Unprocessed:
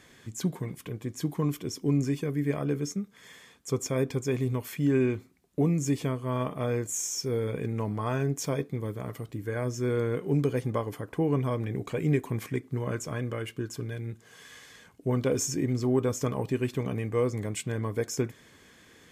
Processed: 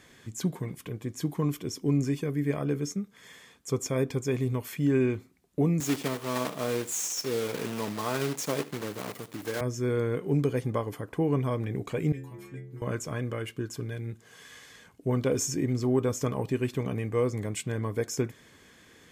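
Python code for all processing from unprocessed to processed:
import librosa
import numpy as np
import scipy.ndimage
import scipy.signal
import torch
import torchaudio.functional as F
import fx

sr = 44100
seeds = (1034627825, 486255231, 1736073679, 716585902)

y = fx.chain(x, sr, fx.block_float(bits=3),
    fx.highpass(hz=190.0, slope=12),
    fx.echo_single(ms=75, db=-17.0), at=(5.8, 9.61))
y = fx.chain(y, sr, fx.stiff_resonator(f0_hz=64.0, decay_s=0.8, stiffness=0.008),
    fx.band_squash(depth_pct=70), at=(12.12, 12.82))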